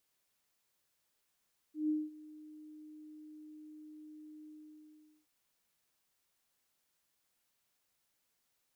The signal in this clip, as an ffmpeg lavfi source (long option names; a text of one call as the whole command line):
ffmpeg -f lavfi -i "aevalsrc='0.0376*sin(2*PI*306*t)':duration=3.521:sample_rate=44100,afade=type=in:duration=0.15,afade=type=out:start_time=0.15:duration=0.209:silence=0.0891,afade=type=out:start_time=2.73:duration=0.791" out.wav